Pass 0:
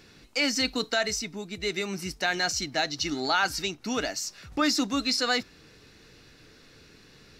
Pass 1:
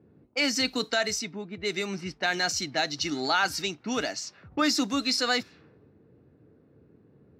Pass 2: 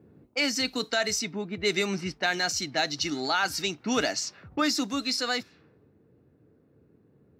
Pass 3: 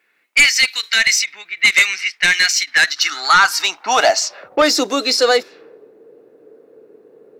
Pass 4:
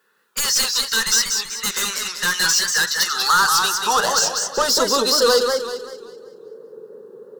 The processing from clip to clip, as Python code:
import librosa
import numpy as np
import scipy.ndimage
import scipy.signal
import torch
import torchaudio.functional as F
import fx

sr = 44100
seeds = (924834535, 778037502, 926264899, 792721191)

y1 = fx.env_lowpass(x, sr, base_hz=430.0, full_db=-25.5)
y1 = scipy.signal.sosfilt(scipy.signal.butter(4, 79.0, 'highpass', fs=sr, output='sos'), y1)
y2 = fx.high_shelf(y1, sr, hz=11000.0, db=4.0)
y2 = fx.rider(y2, sr, range_db=5, speed_s=0.5)
y3 = fx.filter_sweep_highpass(y2, sr, from_hz=2100.0, to_hz=450.0, start_s=2.52, end_s=4.79, q=3.4)
y3 = fx.fold_sine(y3, sr, drive_db=7, ceiling_db=-7.5)
y3 = fx.end_taper(y3, sr, db_per_s=440.0)
y3 = F.gain(torch.from_numpy(y3), 1.5).numpy()
y4 = 10.0 ** (-16.5 / 20.0) * np.tanh(y3 / 10.0 ** (-16.5 / 20.0))
y4 = fx.fixed_phaser(y4, sr, hz=450.0, stages=8)
y4 = fx.echo_warbled(y4, sr, ms=191, feedback_pct=40, rate_hz=2.8, cents=144, wet_db=-4.5)
y4 = F.gain(torch.from_numpy(y4), 5.5).numpy()